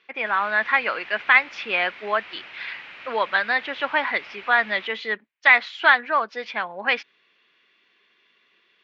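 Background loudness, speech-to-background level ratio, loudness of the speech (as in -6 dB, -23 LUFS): -40.0 LUFS, 18.5 dB, -21.5 LUFS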